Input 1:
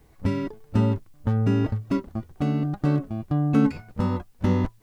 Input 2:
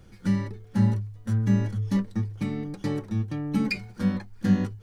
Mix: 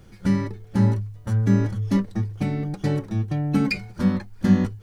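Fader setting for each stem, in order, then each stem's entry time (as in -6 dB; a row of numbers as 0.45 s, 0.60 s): -6.5 dB, +3.0 dB; 0.00 s, 0.00 s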